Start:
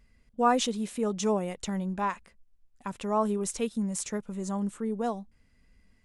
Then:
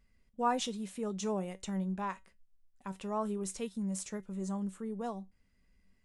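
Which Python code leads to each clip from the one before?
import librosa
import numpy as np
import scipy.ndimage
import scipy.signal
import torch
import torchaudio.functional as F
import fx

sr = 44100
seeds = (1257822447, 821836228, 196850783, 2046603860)

y = fx.comb_fb(x, sr, f0_hz=190.0, decay_s=0.19, harmonics='all', damping=0.0, mix_pct=60)
y = F.gain(torch.from_numpy(y), -1.5).numpy()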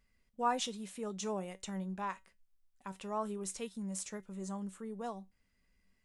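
y = fx.low_shelf(x, sr, hz=460.0, db=-6.0)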